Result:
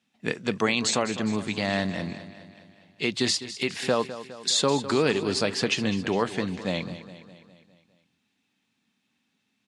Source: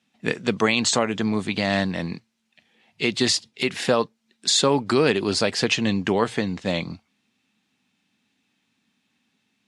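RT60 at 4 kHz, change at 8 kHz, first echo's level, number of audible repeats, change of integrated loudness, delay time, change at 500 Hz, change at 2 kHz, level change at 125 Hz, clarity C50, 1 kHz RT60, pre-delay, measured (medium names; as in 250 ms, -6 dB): no reverb, -3.5 dB, -13.5 dB, 5, -3.5 dB, 205 ms, -3.5 dB, -3.5 dB, -3.5 dB, no reverb, no reverb, no reverb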